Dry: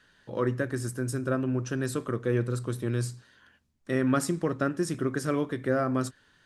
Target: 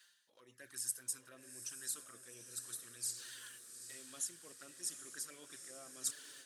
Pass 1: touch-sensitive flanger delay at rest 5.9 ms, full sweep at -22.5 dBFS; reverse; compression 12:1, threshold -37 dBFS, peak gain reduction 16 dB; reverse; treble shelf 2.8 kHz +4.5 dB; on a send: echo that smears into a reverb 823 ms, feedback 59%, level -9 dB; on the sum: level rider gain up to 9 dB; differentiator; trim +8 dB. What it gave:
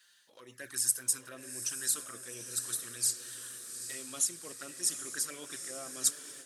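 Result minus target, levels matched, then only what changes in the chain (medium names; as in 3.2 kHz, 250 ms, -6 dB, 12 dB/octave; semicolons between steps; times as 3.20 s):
compression: peak gain reduction -10.5 dB
change: compression 12:1, threshold -48.5 dBFS, peak gain reduction 26.5 dB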